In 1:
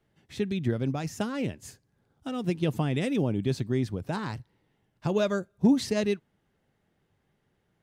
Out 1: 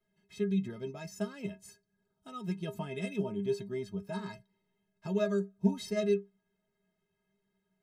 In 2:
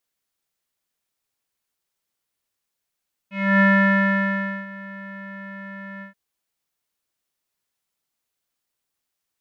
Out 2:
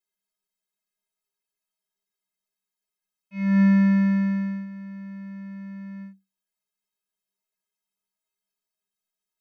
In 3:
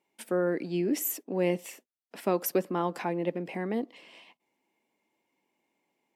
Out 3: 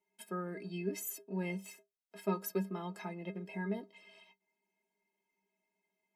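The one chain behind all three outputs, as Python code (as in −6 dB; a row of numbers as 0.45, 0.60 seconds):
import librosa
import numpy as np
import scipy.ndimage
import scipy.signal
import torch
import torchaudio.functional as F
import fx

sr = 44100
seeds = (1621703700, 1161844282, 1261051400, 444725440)

y = fx.stiff_resonator(x, sr, f0_hz=190.0, decay_s=0.23, stiffness=0.03)
y = F.gain(torch.from_numpy(y), 3.5).numpy()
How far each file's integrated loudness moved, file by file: −6.0, −2.5, −9.5 LU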